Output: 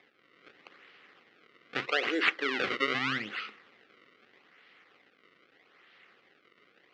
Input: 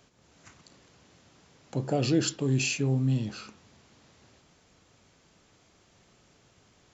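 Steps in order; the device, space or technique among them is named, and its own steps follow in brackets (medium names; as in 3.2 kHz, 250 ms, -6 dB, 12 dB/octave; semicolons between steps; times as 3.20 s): 1.85–2.93 s: high-pass 430 Hz -> 180 Hz 24 dB/octave; circuit-bent sampling toy (decimation with a swept rate 30×, swing 160% 0.8 Hz; cabinet simulation 500–4300 Hz, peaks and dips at 640 Hz -10 dB, 920 Hz -10 dB, 1.3 kHz +3 dB, 2 kHz +9 dB, 2.9 kHz +4 dB); trim +4 dB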